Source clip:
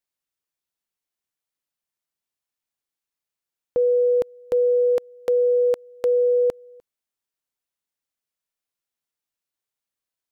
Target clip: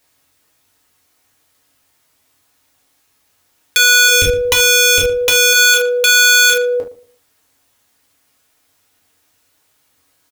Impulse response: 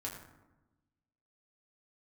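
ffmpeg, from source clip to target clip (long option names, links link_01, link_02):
-filter_complex "[0:a]asplit=3[link_01][link_02][link_03];[link_01]afade=type=out:start_time=4.07:duration=0.02[link_04];[link_02]asubboost=boost=8.5:cutoff=60,afade=type=in:start_time=4.07:duration=0.02,afade=type=out:start_time=5.52:duration=0.02[link_05];[link_03]afade=type=in:start_time=5.52:duration=0.02[link_06];[link_04][link_05][link_06]amix=inputs=3:normalize=0,aeval=exprs='(mod(13.3*val(0)+1,2)-1)/13.3':channel_layout=same,asplit=2[link_07][link_08];[link_08]adelay=115,lowpass=frequency=1200:poles=1,volume=-16dB,asplit=2[link_09][link_10];[link_10]adelay=115,lowpass=frequency=1200:poles=1,volume=0.28,asplit=2[link_11][link_12];[link_12]adelay=115,lowpass=frequency=1200:poles=1,volume=0.28[link_13];[link_07][link_09][link_11][link_13]amix=inputs=4:normalize=0[link_14];[1:a]atrim=start_sample=2205,atrim=end_sample=3528,asetrate=43218,aresample=44100[link_15];[link_14][link_15]afir=irnorm=-1:irlink=0,alimiter=level_in=32dB:limit=-1dB:release=50:level=0:latency=1,volume=-2dB"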